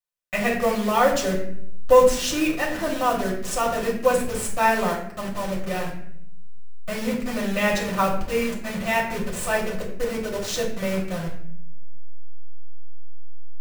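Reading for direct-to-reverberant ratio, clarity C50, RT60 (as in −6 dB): −4.0 dB, 6.5 dB, 0.65 s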